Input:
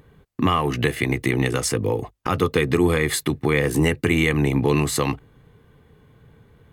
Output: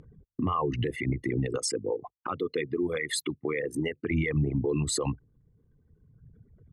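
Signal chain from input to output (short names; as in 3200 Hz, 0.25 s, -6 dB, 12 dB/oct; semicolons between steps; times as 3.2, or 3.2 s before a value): formant sharpening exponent 2; Bessel low-pass 7600 Hz, order 2; reverb removal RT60 1.8 s; 1.58–4.11 HPF 700 Hz 6 dB/oct; dynamic EQ 1700 Hz, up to -6 dB, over -39 dBFS, Q 1.4; limiter -19.5 dBFS, peak gain reduction 10.5 dB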